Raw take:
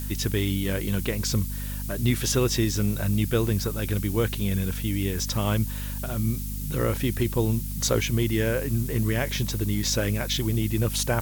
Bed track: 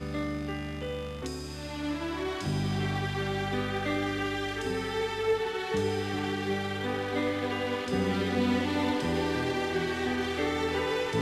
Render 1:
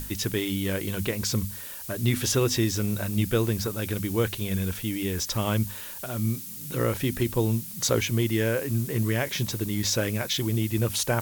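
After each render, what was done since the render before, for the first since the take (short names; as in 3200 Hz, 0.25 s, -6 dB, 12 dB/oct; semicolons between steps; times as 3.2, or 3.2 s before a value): notches 50/100/150/200/250 Hz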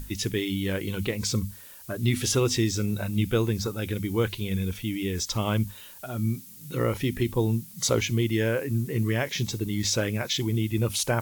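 noise print and reduce 8 dB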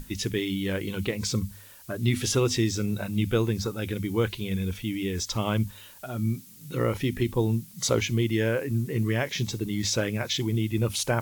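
high shelf 8200 Hz -4.5 dB; notches 50/100 Hz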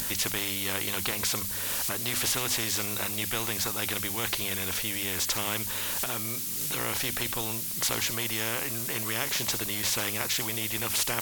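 upward compressor, threshold -34 dBFS; spectral compressor 4:1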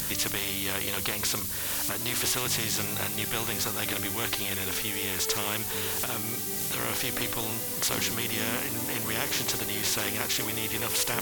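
add bed track -10.5 dB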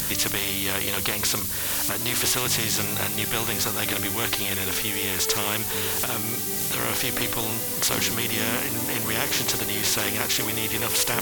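gain +4.5 dB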